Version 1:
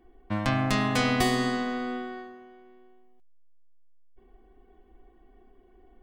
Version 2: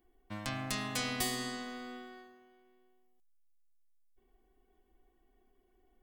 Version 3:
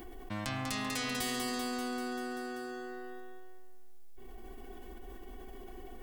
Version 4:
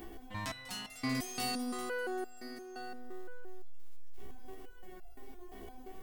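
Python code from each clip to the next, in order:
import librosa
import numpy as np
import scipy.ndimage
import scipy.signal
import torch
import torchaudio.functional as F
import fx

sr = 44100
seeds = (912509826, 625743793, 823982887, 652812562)

y1 = librosa.effects.preemphasis(x, coef=0.8, zi=[0.0])
y2 = fx.echo_feedback(y1, sr, ms=194, feedback_pct=57, wet_db=-6.0)
y2 = fx.env_flatten(y2, sr, amount_pct=70)
y2 = y2 * 10.0 ** (-4.0 / 20.0)
y3 = fx.dmg_crackle(y2, sr, seeds[0], per_s=250.0, level_db=-52.0)
y3 = fx.resonator_held(y3, sr, hz=5.8, low_hz=68.0, high_hz=690.0)
y3 = y3 * 10.0 ** (9.0 / 20.0)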